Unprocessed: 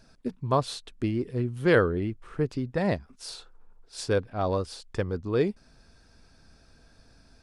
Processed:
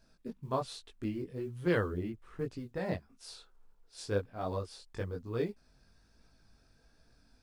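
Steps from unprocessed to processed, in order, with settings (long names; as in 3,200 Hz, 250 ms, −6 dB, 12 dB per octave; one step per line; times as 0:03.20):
log-companded quantiser 8 bits
multi-voice chorus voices 2, 1.2 Hz, delay 20 ms, depth 3 ms
level −6 dB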